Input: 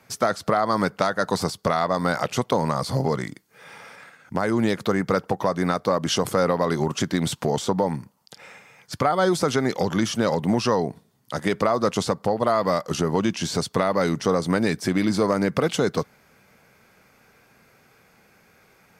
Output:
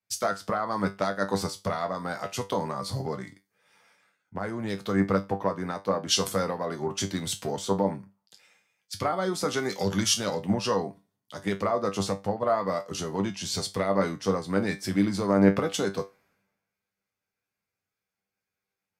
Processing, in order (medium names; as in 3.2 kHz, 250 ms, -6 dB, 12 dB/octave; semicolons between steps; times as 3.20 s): 9.56–10.14 s: treble shelf 2.9 kHz +7 dB; in parallel at +2 dB: compression, threshold -33 dBFS, peak gain reduction 16 dB; on the sum: feedback comb 98 Hz, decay 0.26 s, harmonics all, mix 80%; three bands expanded up and down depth 100%; trim -1 dB